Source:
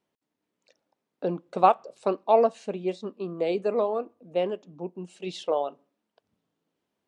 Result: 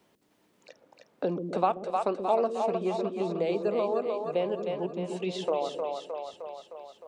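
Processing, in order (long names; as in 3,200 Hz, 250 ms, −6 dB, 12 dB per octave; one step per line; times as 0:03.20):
downward compressor 1.5 to 1, threshold −36 dBFS, peak gain reduction 8.5 dB
echo with a time of its own for lows and highs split 450 Hz, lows 131 ms, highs 308 ms, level −5 dB
multiband upward and downward compressor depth 40%
level +2.5 dB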